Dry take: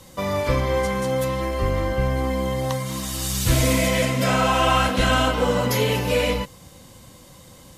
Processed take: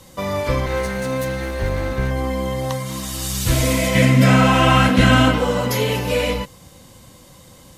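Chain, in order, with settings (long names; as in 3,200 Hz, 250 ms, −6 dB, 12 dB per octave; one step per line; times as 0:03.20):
0:00.66–0:02.11: lower of the sound and its delayed copy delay 0.48 ms
0:03.95–0:05.38: octave-band graphic EQ 125/250/2,000 Hz +9/+8/+6 dB
level +1 dB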